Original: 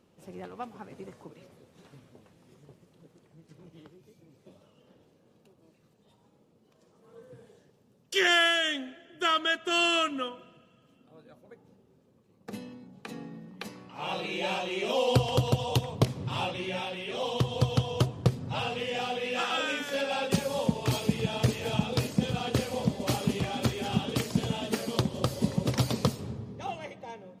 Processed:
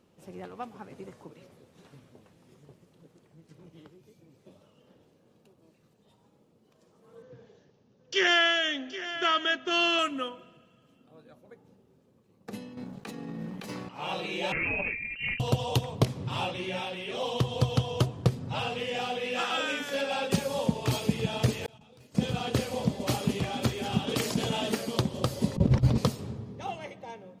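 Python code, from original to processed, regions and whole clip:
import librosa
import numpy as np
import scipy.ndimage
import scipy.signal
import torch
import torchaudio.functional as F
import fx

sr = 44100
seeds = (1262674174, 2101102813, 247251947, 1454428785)

y = fx.chain(x, sr, fx.steep_lowpass(hz=6600.0, slope=72),
    fx.echo_single(ms=773, db=-13.0), at=(7.22, 9.99))
y = fx.chain(y, sr, fx.leveller(passes=2),
    fx.over_compress(threshold_db=-38.0, ratio=-1.0), at=(12.77, 13.89))
y = fx.chain(y, sr, fx.freq_invert(carrier_hz=2900),
    fx.over_compress(threshold_db=-34.0, ratio=-1.0), at=(14.52, 15.4))
y = fx.chain(y, sr, fx.self_delay(depth_ms=0.068),
    fx.gate_flip(shuts_db=-25.0, range_db=-27),
    fx.over_compress(threshold_db=-55.0, ratio=-1.0), at=(21.66, 22.15))
y = fx.chain(y, sr, fx.peak_eq(hz=70.0, db=-7.0, octaves=2.8),
    fx.env_flatten(amount_pct=50), at=(24.07, 24.72))
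y = fx.chain(y, sr, fx.over_compress(threshold_db=-31.0, ratio=-0.5),
    fx.riaa(side='playback'), at=(25.56, 25.98))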